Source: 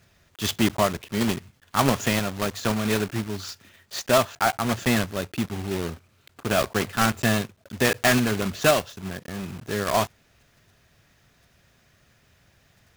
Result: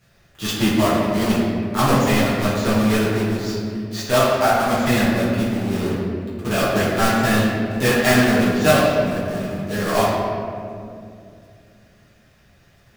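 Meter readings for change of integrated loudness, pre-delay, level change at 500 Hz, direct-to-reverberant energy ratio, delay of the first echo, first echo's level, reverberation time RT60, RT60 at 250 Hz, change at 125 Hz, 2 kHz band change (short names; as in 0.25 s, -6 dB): +5.5 dB, 7 ms, +6.5 dB, -9.0 dB, none, none, 2.5 s, 3.5 s, +6.5 dB, +4.5 dB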